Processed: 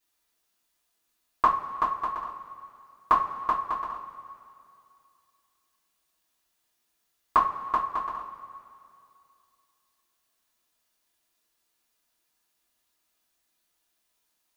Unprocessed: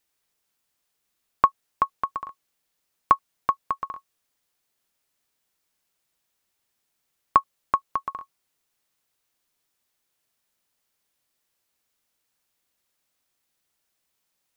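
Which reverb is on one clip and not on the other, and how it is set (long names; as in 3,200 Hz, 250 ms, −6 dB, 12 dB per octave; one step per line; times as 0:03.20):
coupled-rooms reverb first 0.28 s, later 2.5 s, from −18 dB, DRR −8.5 dB
level −8 dB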